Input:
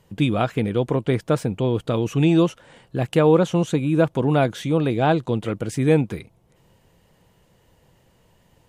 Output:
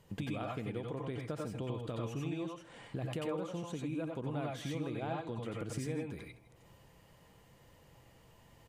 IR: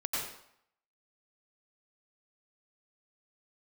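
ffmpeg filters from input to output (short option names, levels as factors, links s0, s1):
-filter_complex "[0:a]acompressor=threshold=0.0251:ratio=10,aecho=1:1:160:0.133[s0];[1:a]atrim=start_sample=2205,afade=t=out:st=0.15:d=0.01,atrim=end_sample=7056[s1];[s0][s1]afir=irnorm=-1:irlink=0,volume=0.631"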